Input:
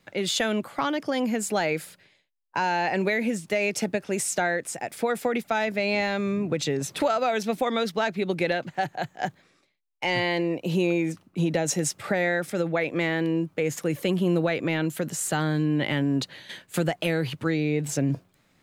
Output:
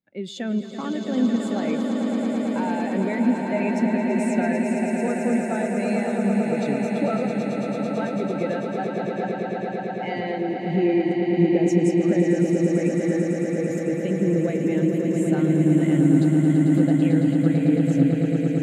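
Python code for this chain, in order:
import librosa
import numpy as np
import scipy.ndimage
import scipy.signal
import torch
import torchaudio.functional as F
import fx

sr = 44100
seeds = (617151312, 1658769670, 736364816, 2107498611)

p1 = fx.peak_eq(x, sr, hz=240.0, db=8.0, octaves=0.64)
p2 = fx.auto_swell(p1, sr, attack_ms=708.0, at=(7.24, 7.92), fade=0.02)
p3 = fx.over_compress(p2, sr, threshold_db=-28.0, ratio=-1.0, at=(12.2, 13.88))
p4 = p3 + fx.echo_swell(p3, sr, ms=111, loudest=8, wet_db=-6, dry=0)
p5 = fx.spectral_expand(p4, sr, expansion=1.5)
y = p5 * 10.0 ** (-2.5 / 20.0)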